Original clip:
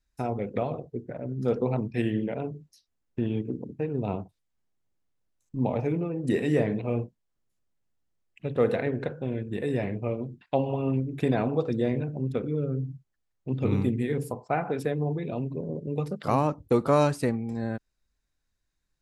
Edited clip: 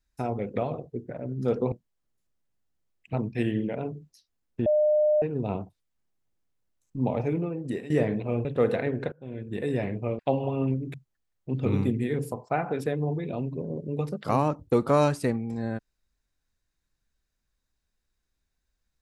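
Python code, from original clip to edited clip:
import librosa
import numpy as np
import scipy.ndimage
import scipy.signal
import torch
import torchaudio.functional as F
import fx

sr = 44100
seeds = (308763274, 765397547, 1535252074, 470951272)

y = fx.edit(x, sr, fx.bleep(start_s=3.25, length_s=0.56, hz=605.0, db=-18.5),
    fx.fade_out_to(start_s=6.06, length_s=0.43, floor_db=-16.0),
    fx.move(start_s=7.04, length_s=1.41, to_s=1.72),
    fx.fade_in_from(start_s=9.12, length_s=0.48, floor_db=-23.5),
    fx.cut(start_s=10.19, length_s=0.26),
    fx.cut(start_s=11.2, length_s=1.73), tone=tone)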